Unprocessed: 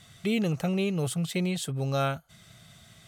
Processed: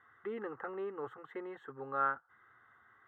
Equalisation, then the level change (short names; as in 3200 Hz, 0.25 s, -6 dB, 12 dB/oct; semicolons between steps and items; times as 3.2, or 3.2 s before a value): elliptic low-pass 1900 Hz, stop band 60 dB; differentiator; fixed phaser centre 640 Hz, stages 6; +18.0 dB